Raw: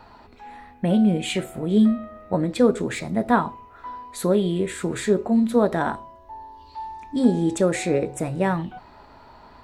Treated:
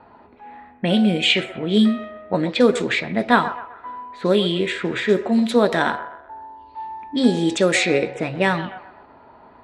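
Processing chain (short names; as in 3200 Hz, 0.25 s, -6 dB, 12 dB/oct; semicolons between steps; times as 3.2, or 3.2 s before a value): 4.84–5.35 notch 4300 Hz, Q 12; low-pass opened by the level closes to 850 Hz, open at -15.5 dBFS; weighting filter D; band-limited delay 0.127 s, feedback 39%, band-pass 930 Hz, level -11.5 dB; gain +3 dB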